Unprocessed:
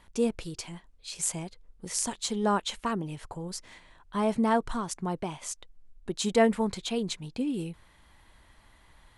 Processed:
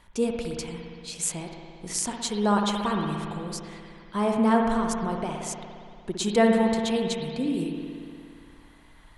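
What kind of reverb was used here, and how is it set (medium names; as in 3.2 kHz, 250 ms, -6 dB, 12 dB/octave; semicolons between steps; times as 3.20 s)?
spring tank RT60 2.3 s, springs 58 ms, chirp 60 ms, DRR 1.5 dB; trim +1.5 dB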